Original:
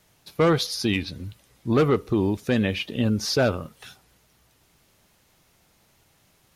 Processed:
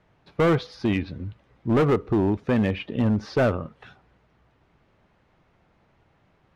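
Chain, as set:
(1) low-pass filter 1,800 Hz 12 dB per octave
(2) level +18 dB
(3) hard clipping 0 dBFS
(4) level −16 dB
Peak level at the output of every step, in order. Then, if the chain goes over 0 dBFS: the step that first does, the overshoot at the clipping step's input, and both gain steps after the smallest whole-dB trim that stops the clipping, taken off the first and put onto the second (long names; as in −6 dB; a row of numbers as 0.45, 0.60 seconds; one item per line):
−12.0, +6.0, 0.0, −16.0 dBFS
step 2, 6.0 dB
step 2 +12 dB, step 4 −10 dB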